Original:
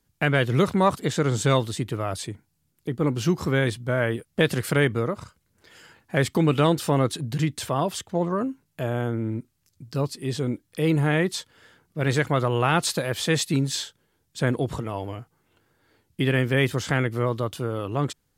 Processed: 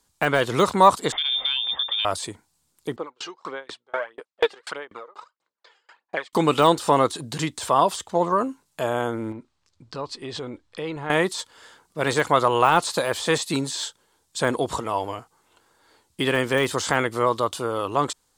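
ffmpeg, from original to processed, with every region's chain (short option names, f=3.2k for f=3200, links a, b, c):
-filter_complex "[0:a]asettb=1/sr,asplit=3[a][b][c];[a]atrim=end=1.124[d];[b]atrim=start=1.12:end=2.05,asetpts=PTS-STARTPTS,afade=t=in:d=0.004:c=qsin,afade=t=out:st=0.926:d=0.004:c=qsin,lowpass=f=3.1k:t=q:w=0.5098,lowpass=f=3.1k:t=q:w=0.6013,lowpass=f=3.1k:t=q:w=0.9,lowpass=f=3.1k:t=q:w=2.563,afreqshift=-3700,acompressor=threshold=-26dB:ratio=12:attack=3.2:release=140:knee=1:detection=peak[e];[c]atrim=start=2.046[f];[d][e]acrossfade=d=0.004:c1=hsin:c2=qsin[g];[g][f]acrossfade=d=0.004:c1=qsin:c2=hsin,asettb=1/sr,asplit=3[h][i][j];[h]atrim=end=2.964[k];[i]atrim=start=2.96:end=6.33,asetpts=PTS-STARTPTS,afade=t=in:d=0.004:c=qsin,afade=t=out:st=3.366:d=0.004:c=qsin,aphaser=in_gain=1:out_gain=1:delay=2.5:decay=0.57:speed=1.6:type=sinusoidal,highpass=450,lowpass=3.3k,aeval=exprs='val(0)*pow(10,-36*if(lt(mod(4.1*n/s,1),2*abs(4.1)/1000),1-mod(4.1*n/s,1)/(2*abs(4.1)/1000),(mod(4.1*n/s,1)-2*abs(4.1)/1000)/(1-2*abs(4.1)/1000))/20)':c=same[l];[j]atrim=start=6.326[m];[k][l]acrossfade=d=0.004:c1=hsin:c2=qsin[n];[n][m]acrossfade=d=0.004:c1=qsin:c2=hsin,asettb=1/sr,asplit=3[o][p][q];[o]atrim=end=9.324[r];[p]atrim=start=9.32:end=11.1,asetpts=PTS-STARTPTS,afade=t=in:d=0.004:c=qsin,afade=t=out:st=1.776:d=0.004:c=qsin,lowpass=3.5k,asubboost=boost=8:cutoff=84,acompressor=threshold=-30dB:ratio=3:attack=3.2:release=140:knee=1:detection=peak[s];[q]atrim=start=11.096[t];[r][s]acrossfade=d=0.004:c1=hsin:c2=qsin[u];[u][t]acrossfade=d=0.004:c1=qsin:c2=hsin,deesser=0.8,equalizer=f=125:t=o:w=1:g=-8,equalizer=f=500:t=o:w=1:g=3,equalizer=f=1k:t=o:w=1:g=11,equalizer=f=4k:t=o:w=1:g=7,equalizer=f=8k:t=o:w=1:g=12,volume=-1dB"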